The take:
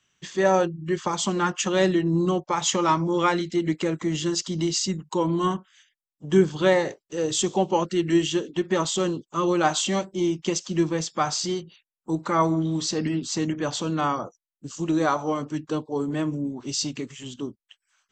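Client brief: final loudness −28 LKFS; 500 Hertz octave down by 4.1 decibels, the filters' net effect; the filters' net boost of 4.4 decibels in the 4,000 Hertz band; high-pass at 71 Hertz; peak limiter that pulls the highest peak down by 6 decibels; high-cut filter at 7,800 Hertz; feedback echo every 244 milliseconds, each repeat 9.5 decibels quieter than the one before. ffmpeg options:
ffmpeg -i in.wav -af "highpass=71,lowpass=7800,equalizer=frequency=500:width_type=o:gain=-6,equalizer=frequency=4000:width_type=o:gain=6,alimiter=limit=-14.5dB:level=0:latency=1,aecho=1:1:244|488|732|976:0.335|0.111|0.0365|0.012,volume=-1.5dB" out.wav

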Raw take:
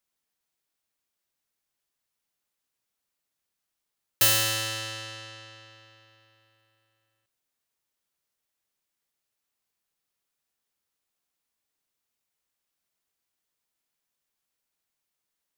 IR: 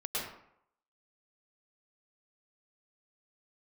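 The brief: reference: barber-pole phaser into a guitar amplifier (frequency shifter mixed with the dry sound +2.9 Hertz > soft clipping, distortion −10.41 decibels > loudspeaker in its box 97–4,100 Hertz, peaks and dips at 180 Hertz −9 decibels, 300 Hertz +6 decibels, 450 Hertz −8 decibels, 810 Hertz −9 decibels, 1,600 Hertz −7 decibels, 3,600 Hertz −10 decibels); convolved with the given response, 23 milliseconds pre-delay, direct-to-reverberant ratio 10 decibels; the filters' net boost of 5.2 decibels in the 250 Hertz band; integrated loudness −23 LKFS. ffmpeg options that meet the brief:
-filter_complex "[0:a]equalizer=frequency=250:width_type=o:gain=5.5,asplit=2[link_01][link_02];[1:a]atrim=start_sample=2205,adelay=23[link_03];[link_02][link_03]afir=irnorm=-1:irlink=0,volume=-15dB[link_04];[link_01][link_04]amix=inputs=2:normalize=0,asplit=2[link_05][link_06];[link_06]afreqshift=2.9[link_07];[link_05][link_07]amix=inputs=2:normalize=1,asoftclip=threshold=-23.5dB,highpass=97,equalizer=frequency=180:width_type=q:width=4:gain=-9,equalizer=frequency=300:width_type=q:width=4:gain=6,equalizer=frequency=450:width_type=q:width=4:gain=-8,equalizer=frequency=810:width_type=q:width=4:gain=-9,equalizer=frequency=1600:width_type=q:width=4:gain=-7,equalizer=frequency=3600:width_type=q:width=4:gain=-10,lowpass=frequency=4100:width=0.5412,lowpass=frequency=4100:width=1.3066,volume=15dB"

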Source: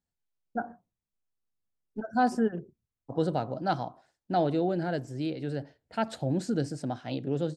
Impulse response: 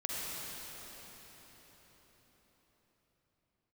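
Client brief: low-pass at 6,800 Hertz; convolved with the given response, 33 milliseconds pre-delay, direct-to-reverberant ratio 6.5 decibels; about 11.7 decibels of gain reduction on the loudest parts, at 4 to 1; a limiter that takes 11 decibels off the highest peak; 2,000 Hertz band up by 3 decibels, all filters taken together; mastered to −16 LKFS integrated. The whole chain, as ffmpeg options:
-filter_complex "[0:a]lowpass=6800,equalizer=frequency=2000:width_type=o:gain=4.5,acompressor=threshold=-35dB:ratio=4,alimiter=level_in=7.5dB:limit=-24dB:level=0:latency=1,volume=-7.5dB,asplit=2[link_01][link_02];[1:a]atrim=start_sample=2205,adelay=33[link_03];[link_02][link_03]afir=irnorm=-1:irlink=0,volume=-11dB[link_04];[link_01][link_04]amix=inputs=2:normalize=0,volume=26dB"

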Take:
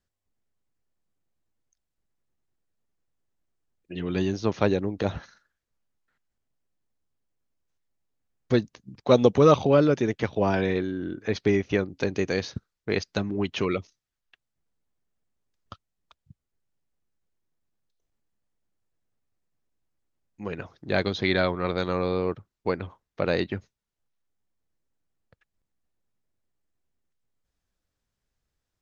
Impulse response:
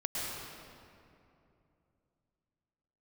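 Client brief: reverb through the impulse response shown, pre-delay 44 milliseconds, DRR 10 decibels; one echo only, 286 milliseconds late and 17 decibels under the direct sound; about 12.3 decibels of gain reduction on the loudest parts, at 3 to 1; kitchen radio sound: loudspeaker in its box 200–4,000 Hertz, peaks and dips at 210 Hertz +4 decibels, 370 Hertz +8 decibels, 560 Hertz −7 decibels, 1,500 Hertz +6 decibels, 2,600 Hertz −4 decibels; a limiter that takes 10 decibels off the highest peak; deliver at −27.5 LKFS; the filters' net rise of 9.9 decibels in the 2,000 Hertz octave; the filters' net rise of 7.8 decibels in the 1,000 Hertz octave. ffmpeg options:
-filter_complex "[0:a]equalizer=frequency=1000:width_type=o:gain=6.5,equalizer=frequency=2000:width_type=o:gain=7,acompressor=threshold=-27dB:ratio=3,alimiter=limit=-19dB:level=0:latency=1,aecho=1:1:286:0.141,asplit=2[link_01][link_02];[1:a]atrim=start_sample=2205,adelay=44[link_03];[link_02][link_03]afir=irnorm=-1:irlink=0,volume=-15.5dB[link_04];[link_01][link_04]amix=inputs=2:normalize=0,highpass=200,equalizer=frequency=210:width_type=q:width=4:gain=4,equalizer=frequency=370:width_type=q:width=4:gain=8,equalizer=frequency=560:width_type=q:width=4:gain=-7,equalizer=frequency=1500:width_type=q:width=4:gain=6,equalizer=frequency=2600:width_type=q:width=4:gain=-4,lowpass=frequency=4000:width=0.5412,lowpass=frequency=4000:width=1.3066,volume=4dB"

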